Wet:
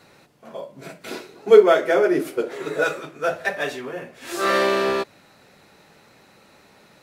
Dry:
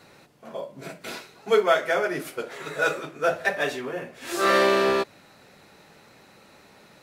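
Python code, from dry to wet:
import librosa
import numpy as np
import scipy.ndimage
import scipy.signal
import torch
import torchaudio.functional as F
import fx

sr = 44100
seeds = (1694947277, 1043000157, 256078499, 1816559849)

y = fx.peak_eq(x, sr, hz=350.0, db=12.0, octaves=1.3, at=(1.11, 2.84))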